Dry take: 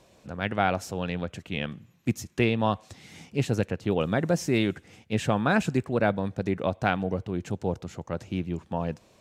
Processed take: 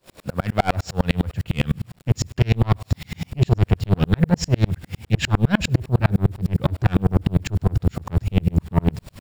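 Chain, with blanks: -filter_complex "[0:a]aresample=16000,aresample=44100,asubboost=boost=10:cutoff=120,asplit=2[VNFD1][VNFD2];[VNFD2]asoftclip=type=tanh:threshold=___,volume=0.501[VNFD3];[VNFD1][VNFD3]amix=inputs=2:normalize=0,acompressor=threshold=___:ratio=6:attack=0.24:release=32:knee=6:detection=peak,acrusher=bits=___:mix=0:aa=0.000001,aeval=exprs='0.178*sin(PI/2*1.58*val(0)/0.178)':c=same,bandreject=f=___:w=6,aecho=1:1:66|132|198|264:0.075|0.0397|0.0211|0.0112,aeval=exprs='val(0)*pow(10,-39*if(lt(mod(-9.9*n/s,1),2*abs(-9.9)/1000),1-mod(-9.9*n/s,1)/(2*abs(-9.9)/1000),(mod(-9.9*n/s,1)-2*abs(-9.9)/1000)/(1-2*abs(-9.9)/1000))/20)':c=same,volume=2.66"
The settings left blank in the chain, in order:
0.0891, 0.126, 8, 6200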